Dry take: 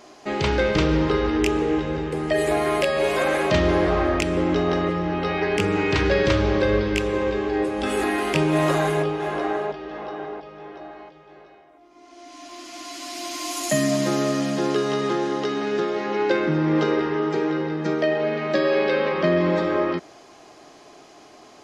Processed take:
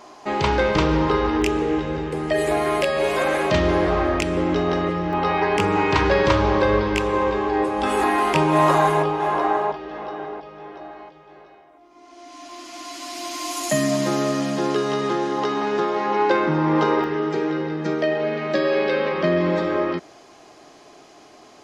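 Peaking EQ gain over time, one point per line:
peaking EQ 960 Hz 0.66 oct
+9 dB
from 1.42 s +2.5 dB
from 5.13 s +12.5 dB
from 9.77 s +4 dB
from 15.38 s +11.5 dB
from 17.04 s 0 dB

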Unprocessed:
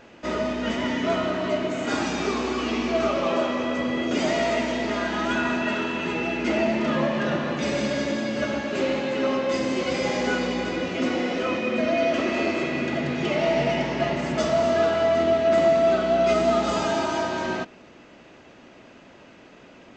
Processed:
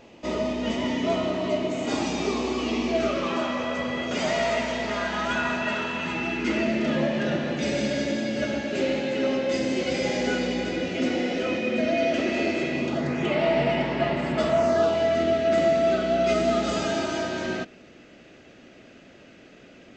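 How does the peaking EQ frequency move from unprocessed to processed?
peaking EQ -11.5 dB 0.54 oct
2.87 s 1.5 kHz
3.65 s 310 Hz
5.90 s 310 Hz
6.89 s 1.1 kHz
12.72 s 1.1 kHz
13.34 s 6.2 kHz
14.47 s 6.2 kHz
15.10 s 970 Hz

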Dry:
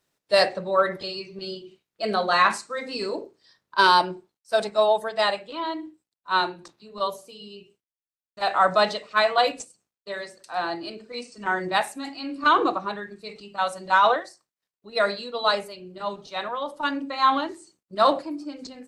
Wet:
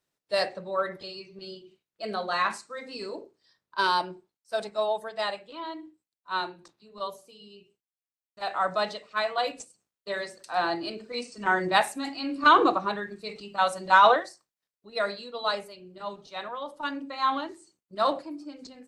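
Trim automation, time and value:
9.41 s -7.5 dB
10.10 s +1 dB
14.22 s +1 dB
15.03 s -6 dB

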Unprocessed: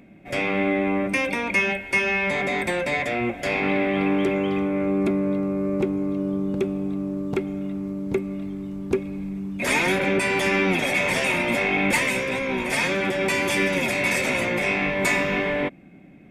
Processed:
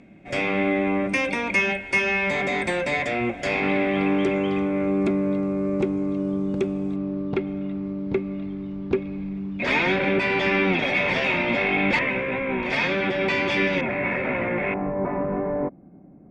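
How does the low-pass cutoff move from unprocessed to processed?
low-pass 24 dB/octave
8.4 kHz
from 6.96 s 4.4 kHz
from 11.99 s 2.6 kHz
from 12.63 s 4.5 kHz
from 13.81 s 2.1 kHz
from 14.74 s 1.1 kHz

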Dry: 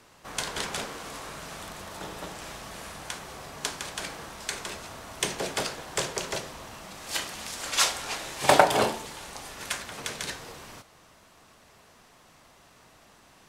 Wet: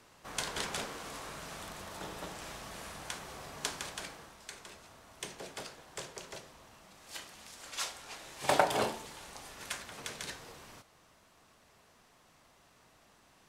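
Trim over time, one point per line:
3.83 s -4.5 dB
4.42 s -14 dB
8.06 s -14 dB
8.70 s -7.5 dB

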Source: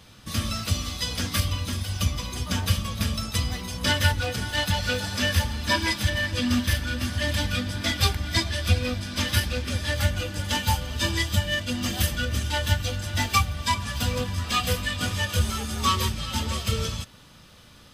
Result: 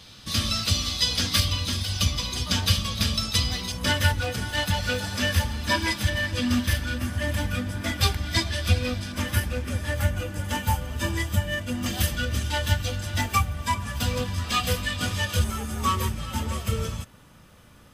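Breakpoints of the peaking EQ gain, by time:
peaking EQ 4.2 kHz 1.2 oct
+8.5 dB
from 3.72 s -2 dB
from 6.98 s -10 dB
from 8.01 s -0.5 dB
from 9.12 s -11 dB
from 11.86 s -1.5 dB
from 13.21 s -9 dB
from 14.00 s -0.5 dB
from 15.44 s -10 dB

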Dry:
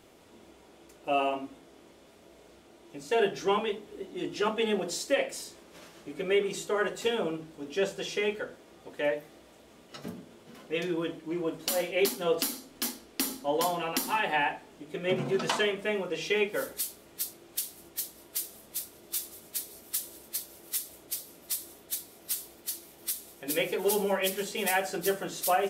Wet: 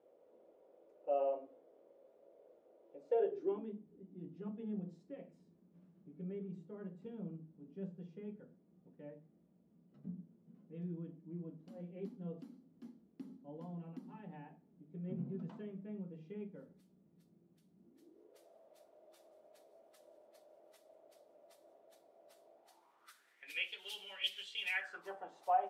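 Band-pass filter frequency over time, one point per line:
band-pass filter, Q 6
3.20 s 530 Hz
3.85 s 180 Hz
17.75 s 180 Hz
18.46 s 620 Hz
22.53 s 620 Hz
23.72 s 3.1 kHz
24.60 s 3.1 kHz
25.16 s 810 Hz

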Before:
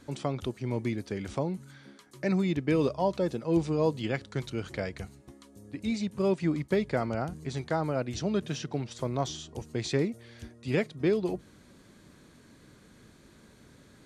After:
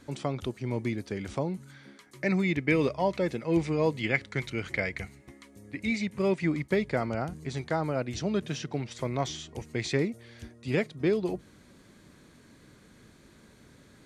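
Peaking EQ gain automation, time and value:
peaking EQ 2.1 kHz 0.5 oct
1.63 s +2.5 dB
2.68 s +14 dB
6.06 s +14 dB
6.93 s +4 dB
8.64 s +4 dB
9.12 s +11.5 dB
9.72 s +11.5 dB
10.14 s +2 dB

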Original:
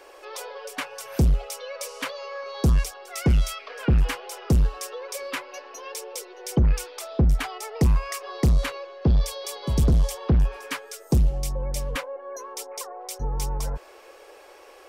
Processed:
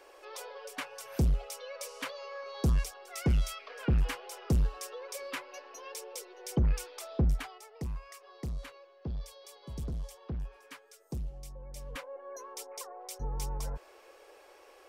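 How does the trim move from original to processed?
7.28 s -7.5 dB
7.69 s -18 dB
11.67 s -18 dB
12.18 s -8 dB

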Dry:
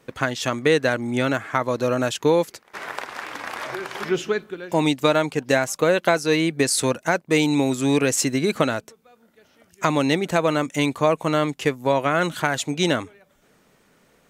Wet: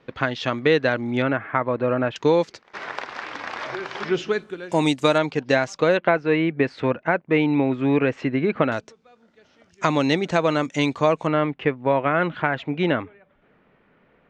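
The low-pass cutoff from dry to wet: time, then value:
low-pass 24 dB/octave
4.3 kHz
from 1.22 s 2.5 kHz
from 2.16 s 5.6 kHz
from 4.31 s 9.4 kHz
from 5.18 s 5.2 kHz
from 5.97 s 2.6 kHz
from 8.72 s 6.1 kHz
from 11.27 s 2.7 kHz

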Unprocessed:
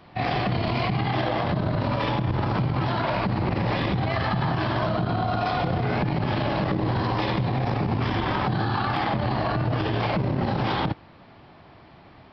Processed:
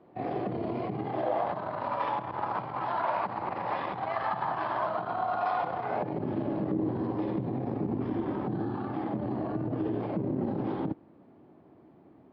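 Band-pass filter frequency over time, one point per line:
band-pass filter, Q 1.7
1.00 s 390 Hz
1.61 s 940 Hz
5.84 s 940 Hz
6.27 s 310 Hz

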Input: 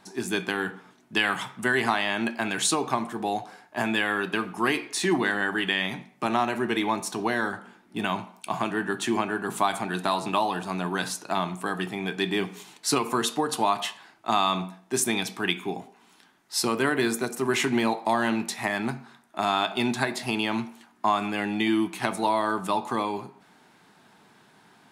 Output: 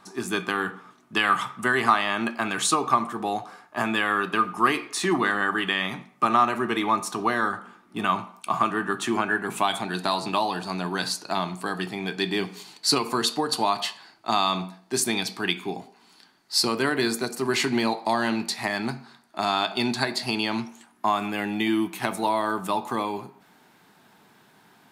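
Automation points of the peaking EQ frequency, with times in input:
peaking EQ +14 dB 0.22 oct
9.11 s 1.2 kHz
9.93 s 4.5 kHz
20.58 s 4.5 kHz
21.09 s 14 kHz

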